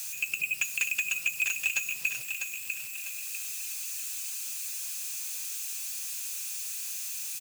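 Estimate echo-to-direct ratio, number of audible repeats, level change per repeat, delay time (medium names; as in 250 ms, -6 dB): -5.5 dB, 4, -9.0 dB, 648 ms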